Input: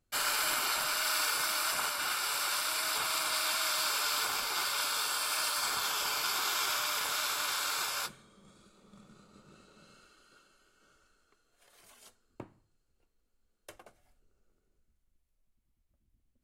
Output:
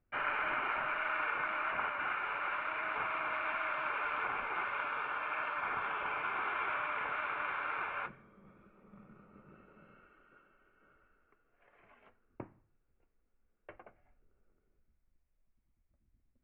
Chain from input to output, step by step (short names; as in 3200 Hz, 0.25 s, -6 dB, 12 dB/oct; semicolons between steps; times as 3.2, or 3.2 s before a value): steep low-pass 2500 Hz 48 dB/oct